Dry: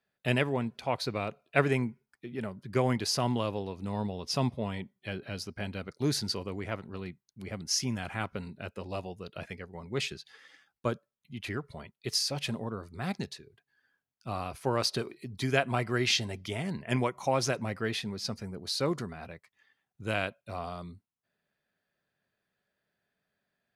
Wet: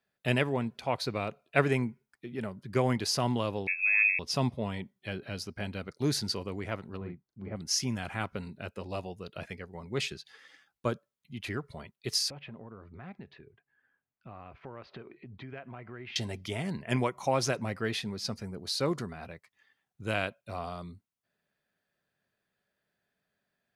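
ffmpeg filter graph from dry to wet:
-filter_complex "[0:a]asettb=1/sr,asplit=3[s0][s1][s2];[s0]atrim=end=3.674[s3];[s1]atrim=start=3.67:end=4.19,asetpts=PTS-STARTPTS,afade=t=in:d=0.004:c=qsin,afade=t=out:st=0.516:d=0.004:c=qsin,lowshelf=f=500:g=10,lowpass=f=2300:t=q:w=0.5098,lowpass=f=2300:t=q:w=0.6013,lowpass=f=2300:t=q:w=0.9,lowpass=f=2300:t=q:w=2.563,afreqshift=-2700[s4];[s2]atrim=start=4.186[s5];[s3][s4]acrossfade=d=0.004:c1=hsin:c2=qsin[s6];[s6][s5]acrossfade=d=0.004:c1=qsin:c2=hsin,asettb=1/sr,asplit=3[s7][s8][s9];[s7]atrim=end=6.974[s10];[s8]atrim=start=6.97:end=7.56,asetpts=PTS-STARTPTS,afade=t=in:d=0.004:c=qsin,afade=t=out:st=0.586:d=0.004:c=qsin,lowpass=1300,asplit=2[s11][s12];[s12]adelay=40,volume=0.631[s13];[s11][s13]amix=inputs=2:normalize=0,atrim=end_sample=26019[s14];[s9]atrim=start=7.556[s15];[s10][s14]acrossfade=d=0.004:c1=hsin:c2=qsin[s16];[s16][s15]acrossfade=d=0.004:c1=qsin:c2=hsin,asettb=1/sr,asplit=3[s17][s18][s19];[s17]atrim=end=12.304[s20];[s18]atrim=start=12.3:end=16.16,asetpts=PTS-STARTPTS,afade=t=in:d=0.004:c=qsin,afade=t=out:st=3.856:d=0.004:c=qsin,lowpass=f=2600:w=0.5412,lowpass=f=2600:w=1.3066,acompressor=threshold=0.00562:ratio=3:attack=3.2:release=140:knee=1:detection=peak[s21];[s19]atrim=start=16.156[s22];[s20][s21]acrossfade=d=0.004:c1=hsin:c2=qsin[s23];[s23][s22]acrossfade=d=0.004:c1=qsin:c2=hsin"

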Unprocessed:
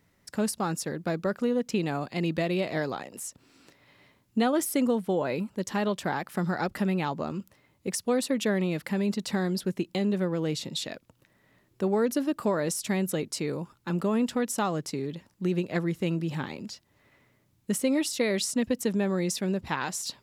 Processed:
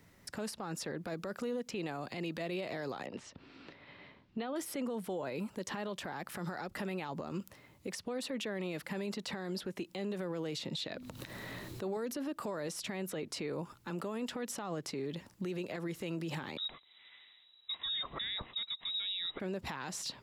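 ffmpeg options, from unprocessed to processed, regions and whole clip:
-filter_complex "[0:a]asettb=1/sr,asplit=3[s0][s1][s2];[s0]atrim=end=3.064[s3];[s1]atrim=start=3.06:end=4.56,asetpts=PTS-STARTPTS,afade=t=in:d=0.004:c=qsin,afade=t=out:st=1.496:d=0.004:c=qsin,lowpass=f=4000:w=0.5412,lowpass=f=4000:w=1.3066,bandreject=f=60:t=h:w=6,bandreject=f=120:t=h:w=6[s4];[s2]atrim=start=4.556[s5];[s3][s4]acrossfade=d=0.004:c1=hsin:c2=qsin[s6];[s6][s5]acrossfade=d=0.004:c1=qsin:c2=hsin,asettb=1/sr,asplit=3[s7][s8][s9];[s7]atrim=end=10.804[s10];[s8]atrim=start=10.8:end=11.97,asetpts=PTS-STARTPTS,afade=t=in:d=0.004:c=qsin,afade=t=out:st=1.166:d=0.004:c=qsin,equalizer=f=4000:t=o:w=0.22:g=8.5,bandreject=f=50:t=h:w=6,bandreject=f=100:t=h:w=6,bandreject=f=150:t=h:w=6,bandreject=f=200:t=h:w=6,bandreject=f=250:t=h:w=6,acompressor=mode=upward:threshold=0.02:ratio=2.5:attack=3.2:release=140:knee=2.83:detection=peak[s11];[s9]atrim=start=11.966[s12];[s10][s11]acrossfade=d=0.004:c1=hsin:c2=qsin[s13];[s13][s12]acrossfade=d=0.004:c1=qsin:c2=hsin,asettb=1/sr,asplit=3[s14][s15][s16];[s14]atrim=end=16.574[s17];[s15]atrim=start=16.57:end=19.4,asetpts=PTS-STARTPTS,afade=t=in:d=0.004:c=qsin,afade=t=out:st=2.826:d=0.004:c=qsin,lowpass=f=3400:t=q:w=0.5098,lowpass=f=3400:t=q:w=0.6013,lowpass=f=3400:t=q:w=0.9,lowpass=f=3400:t=q:w=2.563,afreqshift=-4000,equalizer=f=1500:t=o:w=0.23:g=-5.5[s18];[s16]atrim=start=19.396[s19];[s17][s18]acrossfade=d=0.004:c1=hsin:c2=qsin[s20];[s20][s19]acrossfade=d=0.004:c1=qsin:c2=hsin,acrossover=split=340|4100[s21][s22][s23];[s21]acompressor=threshold=0.01:ratio=4[s24];[s22]acompressor=threshold=0.0282:ratio=4[s25];[s23]acompressor=threshold=0.00316:ratio=4[s26];[s24][s25][s26]amix=inputs=3:normalize=0,alimiter=level_in=3.35:limit=0.0631:level=0:latency=1:release=102,volume=0.299,volume=1.68"

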